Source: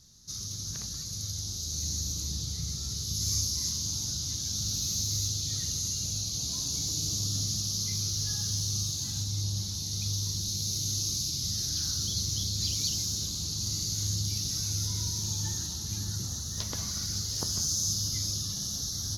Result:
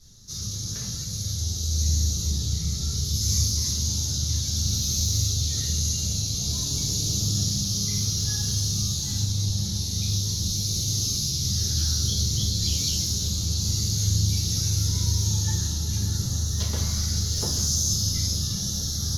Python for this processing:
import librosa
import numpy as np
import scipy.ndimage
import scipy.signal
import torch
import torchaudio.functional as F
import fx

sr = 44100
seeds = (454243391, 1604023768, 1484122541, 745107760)

y = fx.room_shoebox(x, sr, seeds[0], volume_m3=35.0, walls='mixed', distance_m=1.3)
y = y * librosa.db_to_amplitude(-2.5)